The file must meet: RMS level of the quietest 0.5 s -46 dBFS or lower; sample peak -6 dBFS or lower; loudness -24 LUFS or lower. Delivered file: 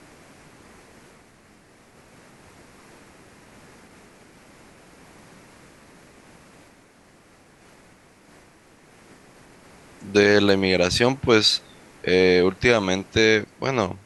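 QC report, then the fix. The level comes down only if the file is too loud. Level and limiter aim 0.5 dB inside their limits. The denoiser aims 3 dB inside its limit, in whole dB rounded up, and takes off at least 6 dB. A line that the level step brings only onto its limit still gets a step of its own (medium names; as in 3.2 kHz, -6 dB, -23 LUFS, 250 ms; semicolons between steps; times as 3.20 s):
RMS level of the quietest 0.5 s -54 dBFS: pass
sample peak -4.0 dBFS: fail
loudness -19.5 LUFS: fail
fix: trim -5 dB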